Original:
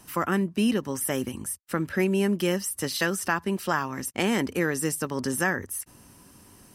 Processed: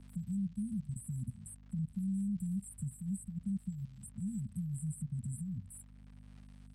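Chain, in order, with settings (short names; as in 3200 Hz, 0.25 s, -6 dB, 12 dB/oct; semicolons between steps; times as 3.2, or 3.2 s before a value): gate -42 dBFS, range -18 dB; bell 500 Hz -14.5 dB 2.1 oct; level quantiser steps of 19 dB; brick-wall FIR band-stop 230–7600 Hz; crackle 220/s -63 dBFS; air absorption 120 m; hum 50 Hz, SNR 20 dB; three-band squash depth 40%; gain +6 dB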